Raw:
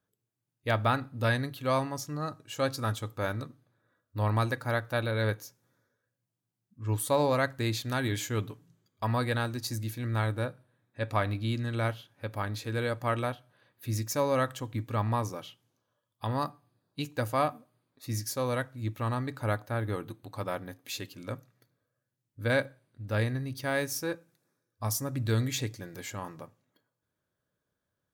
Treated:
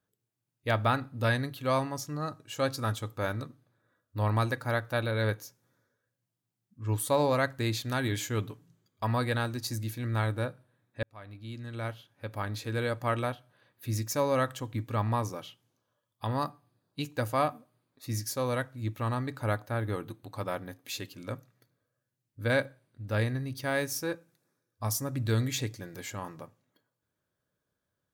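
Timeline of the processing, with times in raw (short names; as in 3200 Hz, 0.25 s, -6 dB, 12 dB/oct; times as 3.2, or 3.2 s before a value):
11.03–12.61 fade in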